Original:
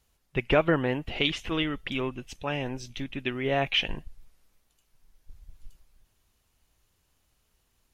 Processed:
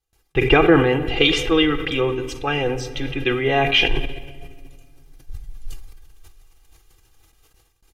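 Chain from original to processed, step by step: comb 2.5 ms, depth 88%; simulated room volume 3400 m³, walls mixed, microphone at 0.67 m; gate with hold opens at -54 dBFS; 1.17–3.34 s: small resonant body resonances 500/1400 Hz, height 8 dB; decay stretcher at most 61 dB/s; trim +6 dB

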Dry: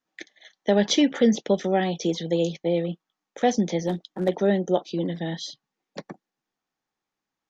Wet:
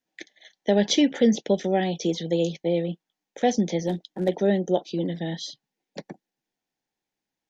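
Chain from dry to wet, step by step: peaking EQ 1.2 kHz -13.5 dB 0.4 oct

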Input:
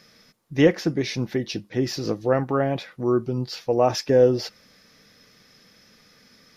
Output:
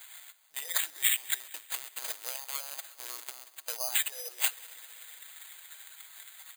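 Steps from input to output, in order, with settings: 1.40–3.76 s: dead-time distortion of 0.28 ms; LPC vocoder at 8 kHz pitch kept; compressor with a negative ratio -21 dBFS, ratio -0.5; peak limiter -28 dBFS, peak gain reduction 19.5 dB; high-pass 810 Hz 24 dB/octave; band-stop 1.2 kHz, Q 17; comb 6.4 ms, depth 42%; multi-head delay 63 ms, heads first and third, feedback 74%, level -20.5 dB; transient shaper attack +8 dB, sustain -1 dB; careless resampling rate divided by 8×, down none, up zero stuff

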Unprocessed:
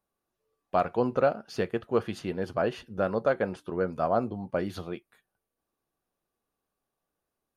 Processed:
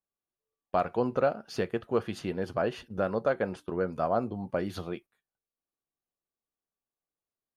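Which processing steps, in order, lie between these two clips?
gate -46 dBFS, range -15 dB; in parallel at -2.5 dB: compression, threshold -33 dBFS, peak gain reduction 14 dB; on the sum: trim -3.5 dB

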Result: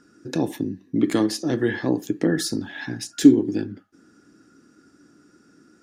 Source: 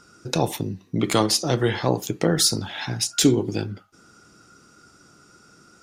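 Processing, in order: small resonant body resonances 280/1700 Hz, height 17 dB, ringing for 30 ms; trim -9.5 dB

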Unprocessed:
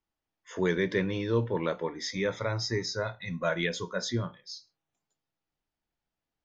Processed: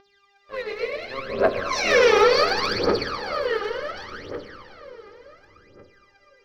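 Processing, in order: reverse spectral sustain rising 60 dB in 0.31 s; Doppler pass-by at 1.94 s, 48 m/s, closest 3.8 m; high-pass 260 Hz 24 dB/octave; bass shelf 450 Hz -11.5 dB; waveshaping leveller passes 5; mains buzz 400 Hz, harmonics 23, -66 dBFS -1 dB/octave; steep low-pass 5.5 kHz 48 dB/octave; treble shelf 2.2 kHz -7.5 dB; reverberation RT60 4.9 s, pre-delay 59 ms, DRR -2 dB; phaser 0.69 Hz, delay 2.5 ms, feedback 79%; trim +4.5 dB

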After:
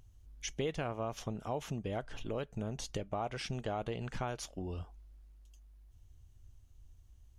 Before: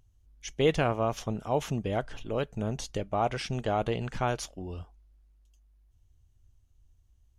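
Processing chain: compression 3:1, threshold -43 dBFS, peak gain reduction 17.5 dB; trim +4.5 dB

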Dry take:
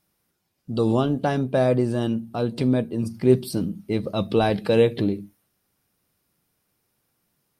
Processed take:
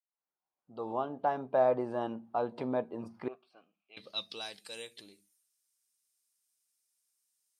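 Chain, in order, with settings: fade-in on the opening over 1.91 s; 3.28–3.97 s: vowel filter a; band-pass sweep 880 Hz -> 7.7 kHz, 3.11–4.58 s; trim +2.5 dB

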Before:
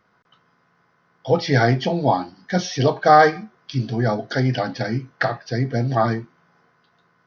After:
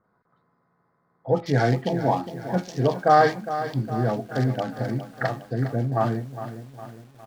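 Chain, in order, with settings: local Wiener filter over 15 samples; bands offset in time lows, highs 40 ms, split 1.8 kHz; bit-crushed delay 409 ms, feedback 55%, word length 7-bit, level -11.5 dB; trim -3.5 dB

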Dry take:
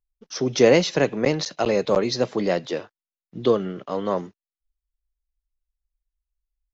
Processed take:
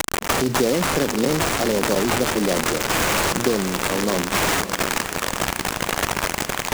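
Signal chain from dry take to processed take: zero-crossing glitches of -10 dBFS; peaking EQ 250 Hz +7 dB 1.6 oct; compression, threshold -17 dBFS, peak gain reduction 10.5 dB; transient shaper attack +2 dB, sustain +7 dB; sample-rate reducer 5 kHz, jitter 0%; echo that smears into a reverb 558 ms, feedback 48%, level -11.5 dB; delay time shaken by noise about 4.6 kHz, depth 0.057 ms

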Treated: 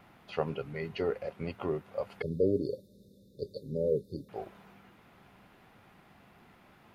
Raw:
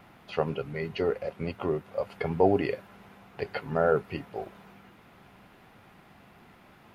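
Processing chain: 2.22–4.29 s: brick-wall FIR band-stop 600–3500 Hz; trim -4 dB

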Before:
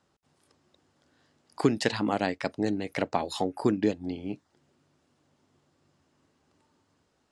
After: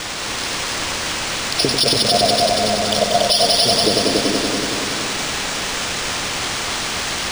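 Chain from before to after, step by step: high-pass 59 Hz; pre-emphasis filter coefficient 0.97; FFT band-reject 740–9000 Hz; treble shelf 6.8 kHz +10 dB; word length cut 10-bit, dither triangular; 1.65–3.87 s: static phaser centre 790 Hz, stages 4; multi-head delay 94 ms, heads all three, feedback 68%, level -7 dB; loudness maximiser +35.5 dB; decimation joined by straight lines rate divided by 3×; trim -1 dB

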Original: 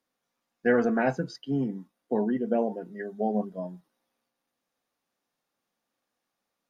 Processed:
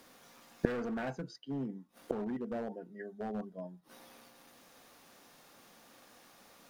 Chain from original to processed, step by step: in parallel at 0 dB: peak limiter -21 dBFS, peak gain reduction 9.5 dB; on the sum: hard clipper -18.5 dBFS, distortion -12 dB; inverted gate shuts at -35 dBFS, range -32 dB; trim +17.5 dB

